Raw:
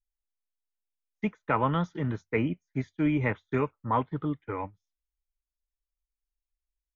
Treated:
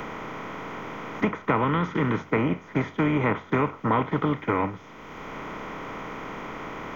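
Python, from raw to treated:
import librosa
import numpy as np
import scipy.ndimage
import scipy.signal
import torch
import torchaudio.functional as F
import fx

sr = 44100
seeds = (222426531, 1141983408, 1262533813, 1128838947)

y = fx.bin_compress(x, sr, power=0.4)
y = fx.peak_eq(y, sr, hz=680.0, db=-8.5, octaves=0.63, at=(1.64, 2.19))
y = fx.band_squash(y, sr, depth_pct=70)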